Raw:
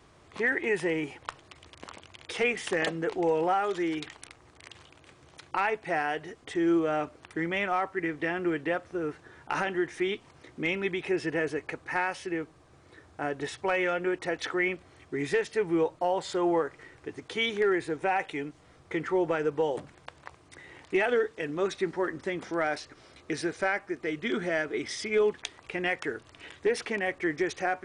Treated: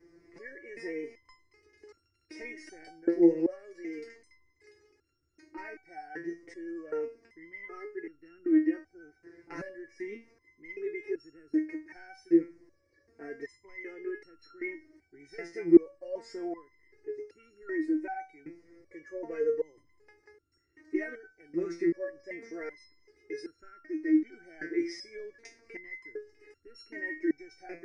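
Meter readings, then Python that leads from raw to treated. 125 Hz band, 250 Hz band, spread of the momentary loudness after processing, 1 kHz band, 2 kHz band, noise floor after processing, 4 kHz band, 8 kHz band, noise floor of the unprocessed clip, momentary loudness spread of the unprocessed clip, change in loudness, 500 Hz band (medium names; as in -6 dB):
-13.0 dB, +1.5 dB, 20 LU, -17.0 dB, -12.5 dB, -73 dBFS, under -15 dB, under -10 dB, -58 dBFS, 16 LU, -3.0 dB, -5.5 dB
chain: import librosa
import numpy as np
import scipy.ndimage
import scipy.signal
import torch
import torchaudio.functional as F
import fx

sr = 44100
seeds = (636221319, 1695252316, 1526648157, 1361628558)

y = fx.vibrato(x, sr, rate_hz=11.0, depth_cents=25.0)
y = fx.curve_eq(y, sr, hz=(100.0, 190.0, 330.0, 790.0, 1200.0, 2000.0, 3400.0, 5100.0, 7800.0, 11000.0), db=(0, -8, 10, -13, -15, 1, -30, 0, -15, -12))
y = fx.resonator_held(y, sr, hz=2.6, low_hz=170.0, high_hz=1400.0)
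y = F.gain(torch.from_numpy(y), 8.5).numpy()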